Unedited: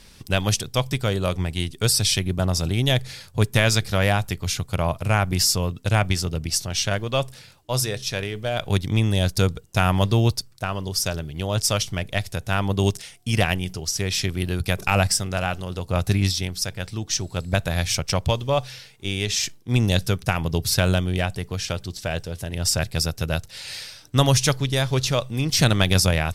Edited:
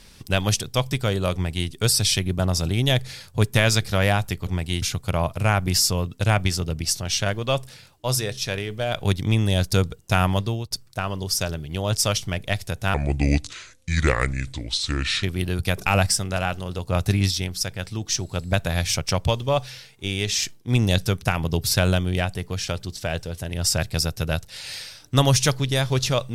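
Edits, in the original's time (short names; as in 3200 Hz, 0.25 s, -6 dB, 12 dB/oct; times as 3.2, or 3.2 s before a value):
1.34–1.69 copy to 4.47
9.88–10.36 fade out, to -23 dB
12.59–14.24 speed 72%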